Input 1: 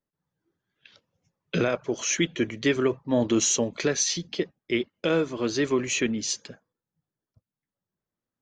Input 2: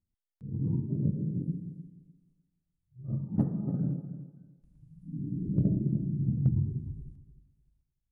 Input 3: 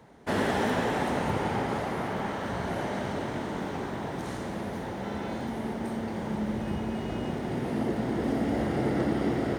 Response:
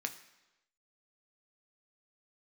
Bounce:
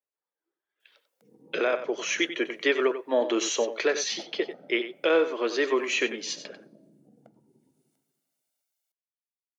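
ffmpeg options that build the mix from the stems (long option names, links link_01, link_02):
-filter_complex "[0:a]lowpass=3600,dynaudnorm=framelen=380:gausssize=7:maxgain=12dB,volume=-8dB,asplit=3[link_01][link_02][link_03];[link_02]volume=-16.5dB[link_04];[link_03]volume=-10.5dB[link_05];[1:a]equalizer=frequency=580:width_type=o:width=0.77:gain=4.5,aecho=1:1:1.4:0.59,adelay=800,volume=1dB,asplit=2[link_06][link_07];[link_07]volume=-15dB[link_08];[link_06]highshelf=frequency=2500:gain=11.5,acompressor=threshold=-34dB:ratio=3,volume=0dB[link_09];[3:a]atrim=start_sample=2205[link_10];[link_04][link_08]amix=inputs=2:normalize=0[link_11];[link_11][link_10]afir=irnorm=-1:irlink=0[link_12];[link_05]aecho=0:1:93:1[link_13];[link_01][link_09][link_12][link_13]amix=inputs=4:normalize=0,highpass=frequency=380:width=0.5412,highpass=frequency=380:width=1.3066"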